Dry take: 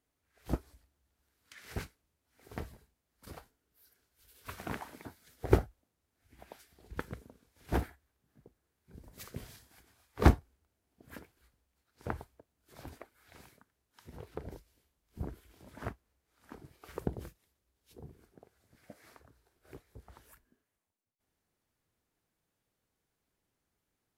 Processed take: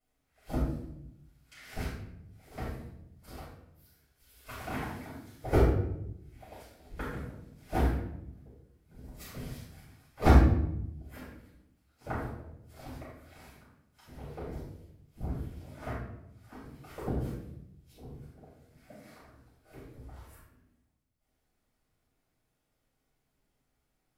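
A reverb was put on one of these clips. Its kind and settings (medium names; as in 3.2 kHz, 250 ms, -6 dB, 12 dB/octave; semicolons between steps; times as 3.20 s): simulated room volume 210 m³, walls mixed, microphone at 6.6 m; trim -12.5 dB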